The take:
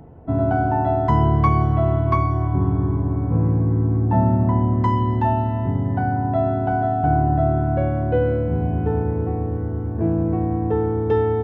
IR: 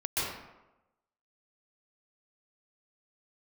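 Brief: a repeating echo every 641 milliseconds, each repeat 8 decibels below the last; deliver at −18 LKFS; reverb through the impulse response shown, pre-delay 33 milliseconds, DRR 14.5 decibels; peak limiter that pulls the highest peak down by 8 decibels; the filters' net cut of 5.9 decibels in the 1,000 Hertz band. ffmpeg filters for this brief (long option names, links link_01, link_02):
-filter_complex "[0:a]equalizer=frequency=1000:width_type=o:gain=-8.5,alimiter=limit=-15dB:level=0:latency=1,aecho=1:1:641|1282|1923|2564|3205:0.398|0.159|0.0637|0.0255|0.0102,asplit=2[link_01][link_02];[1:a]atrim=start_sample=2205,adelay=33[link_03];[link_02][link_03]afir=irnorm=-1:irlink=0,volume=-22.5dB[link_04];[link_01][link_04]amix=inputs=2:normalize=0,volume=6dB"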